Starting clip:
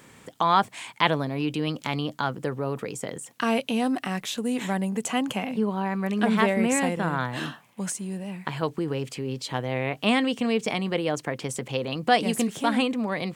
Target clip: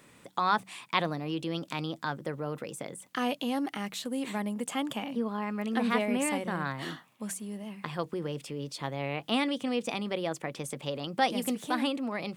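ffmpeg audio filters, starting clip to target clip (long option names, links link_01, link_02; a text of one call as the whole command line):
ffmpeg -i in.wav -af "bandreject=frequency=87.45:width_type=h:width=4,bandreject=frequency=174.9:width_type=h:width=4,asetrate=47628,aresample=44100,volume=-6dB" out.wav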